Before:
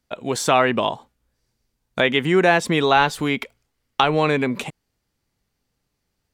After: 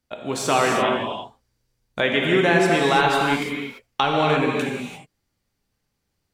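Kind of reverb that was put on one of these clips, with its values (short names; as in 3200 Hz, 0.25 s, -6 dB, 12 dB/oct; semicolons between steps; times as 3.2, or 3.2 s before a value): non-linear reverb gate 0.37 s flat, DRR -1 dB; gain -4 dB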